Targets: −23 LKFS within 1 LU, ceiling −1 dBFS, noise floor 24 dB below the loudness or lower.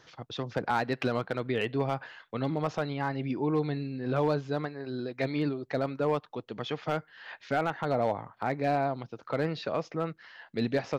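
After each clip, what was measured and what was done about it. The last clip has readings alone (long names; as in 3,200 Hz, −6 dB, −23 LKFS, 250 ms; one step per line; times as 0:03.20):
share of clipped samples 0.5%; peaks flattened at −19.5 dBFS; integrated loudness −32.0 LKFS; sample peak −19.5 dBFS; target loudness −23.0 LKFS
→ clipped peaks rebuilt −19.5 dBFS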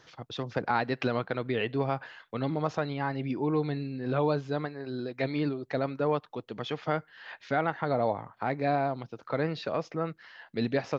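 share of clipped samples 0.0%; integrated loudness −31.5 LKFS; sample peak −13.0 dBFS; target loudness −23.0 LKFS
→ level +8.5 dB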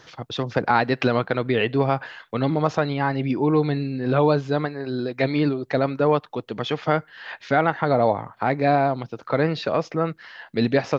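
integrated loudness −23.0 LKFS; sample peak −4.5 dBFS; background noise floor −55 dBFS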